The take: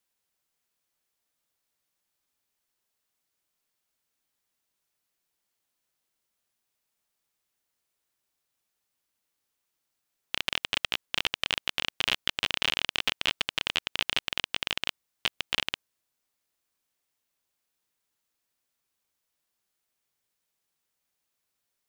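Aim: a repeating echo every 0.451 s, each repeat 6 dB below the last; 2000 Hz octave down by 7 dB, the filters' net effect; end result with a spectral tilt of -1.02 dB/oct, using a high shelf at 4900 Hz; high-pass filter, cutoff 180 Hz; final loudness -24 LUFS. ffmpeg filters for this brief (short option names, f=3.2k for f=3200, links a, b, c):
-af "highpass=180,equalizer=f=2k:t=o:g=-8,highshelf=f=4.9k:g=-7,aecho=1:1:451|902|1353|1804|2255|2706:0.501|0.251|0.125|0.0626|0.0313|0.0157,volume=9.5dB"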